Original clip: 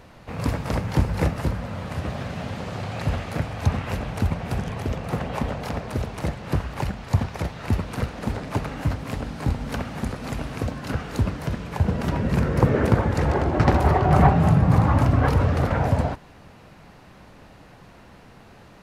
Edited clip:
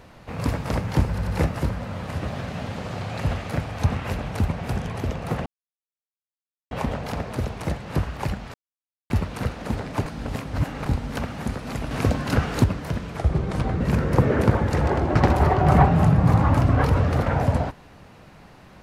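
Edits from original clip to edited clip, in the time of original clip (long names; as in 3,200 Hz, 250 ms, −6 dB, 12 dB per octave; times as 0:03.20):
0:01.09: stutter 0.09 s, 3 plays
0:05.28: splice in silence 1.25 s
0:07.11–0:07.67: silence
0:08.63–0:09.43: reverse
0:10.48–0:11.21: clip gain +6 dB
0:11.74–0:12.25: play speed 80%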